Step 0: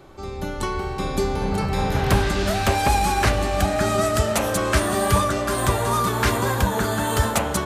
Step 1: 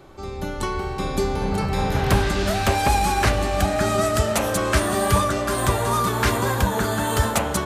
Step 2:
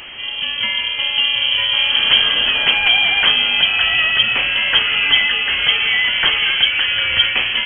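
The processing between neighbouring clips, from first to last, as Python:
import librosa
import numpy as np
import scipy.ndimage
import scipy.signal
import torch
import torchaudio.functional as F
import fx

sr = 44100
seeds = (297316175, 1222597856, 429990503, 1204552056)

y1 = x
y2 = fx.delta_mod(y1, sr, bps=64000, step_db=-33.5)
y2 = 10.0 ** (-9.5 / 20.0) * np.tanh(y2 / 10.0 ** (-9.5 / 20.0))
y2 = fx.freq_invert(y2, sr, carrier_hz=3200)
y2 = y2 * 10.0 ** (5.5 / 20.0)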